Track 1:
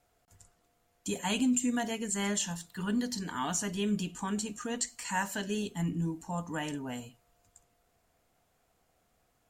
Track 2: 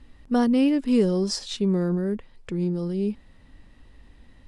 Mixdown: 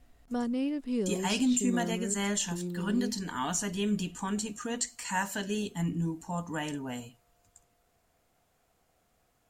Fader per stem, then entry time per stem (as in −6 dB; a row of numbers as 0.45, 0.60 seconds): +1.0, −11.0 decibels; 0.00, 0.00 seconds